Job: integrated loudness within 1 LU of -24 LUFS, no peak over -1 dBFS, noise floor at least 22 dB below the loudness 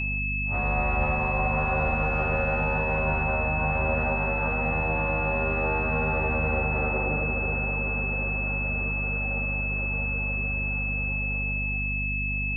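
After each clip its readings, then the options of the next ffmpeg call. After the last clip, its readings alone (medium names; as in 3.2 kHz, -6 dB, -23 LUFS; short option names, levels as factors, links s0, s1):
hum 50 Hz; highest harmonic 250 Hz; hum level -28 dBFS; steady tone 2.6 kHz; tone level -28 dBFS; loudness -26.0 LUFS; peak level -13.5 dBFS; loudness target -24.0 LUFS
-> -af "bandreject=f=50:t=h:w=4,bandreject=f=100:t=h:w=4,bandreject=f=150:t=h:w=4,bandreject=f=200:t=h:w=4,bandreject=f=250:t=h:w=4"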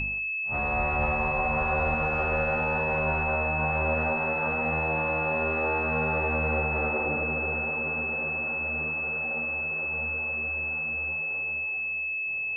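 hum not found; steady tone 2.6 kHz; tone level -28 dBFS
-> -af "bandreject=f=2600:w=30"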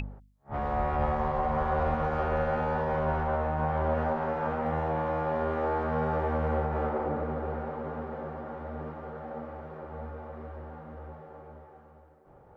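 steady tone not found; loudness -30.5 LUFS; peak level -17.0 dBFS; loudness target -24.0 LUFS
-> -af "volume=2.11"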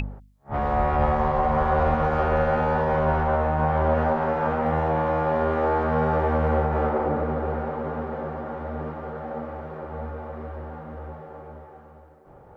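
loudness -24.5 LUFS; peak level -10.5 dBFS; noise floor -49 dBFS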